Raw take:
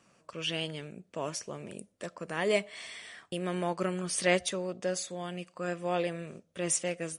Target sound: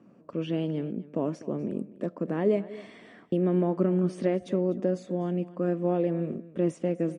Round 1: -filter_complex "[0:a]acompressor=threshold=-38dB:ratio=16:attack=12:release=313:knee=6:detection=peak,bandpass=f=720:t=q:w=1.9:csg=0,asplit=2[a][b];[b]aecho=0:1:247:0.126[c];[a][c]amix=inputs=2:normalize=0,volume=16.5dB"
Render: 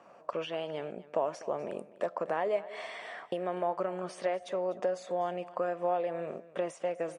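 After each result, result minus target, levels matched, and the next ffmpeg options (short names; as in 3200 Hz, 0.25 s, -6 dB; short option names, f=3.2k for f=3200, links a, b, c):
1000 Hz band +11.5 dB; compressor: peak gain reduction +9.5 dB
-filter_complex "[0:a]acompressor=threshold=-38dB:ratio=16:attack=12:release=313:knee=6:detection=peak,bandpass=f=260:t=q:w=1.9:csg=0,asplit=2[a][b];[b]aecho=0:1:247:0.126[c];[a][c]amix=inputs=2:normalize=0,volume=16.5dB"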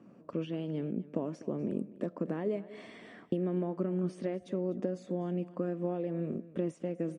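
compressor: peak gain reduction +9.5 dB
-filter_complex "[0:a]acompressor=threshold=-28dB:ratio=16:attack=12:release=313:knee=6:detection=peak,bandpass=f=260:t=q:w=1.9:csg=0,asplit=2[a][b];[b]aecho=0:1:247:0.126[c];[a][c]amix=inputs=2:normalize=0,volume=16.5dB"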